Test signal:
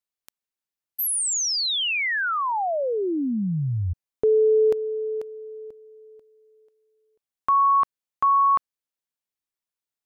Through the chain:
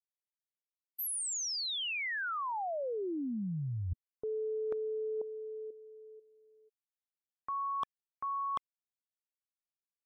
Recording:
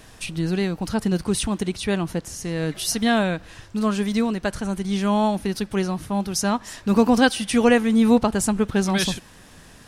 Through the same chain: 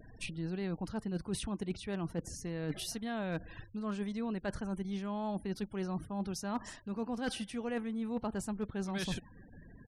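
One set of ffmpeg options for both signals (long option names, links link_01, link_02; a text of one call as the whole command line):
ffmpeg -i in.wav -af "afftfilt=real='re*gte(hypot(re,im),0.00891)':imag='im*gte(hypot(re,im),0.00891)':win_size=1024:overlap=0.75,highshelf=frequency=3100:gain=-7.5,areverse,acompressor=threshold=-30dB:ratio=16:attack=43:release=212:knee=1:detection=rms,areverse,aresample=32000,aresample=44100,asoftclip=type=hard:threshold=-22dB,volume=-4.5dB" out.wav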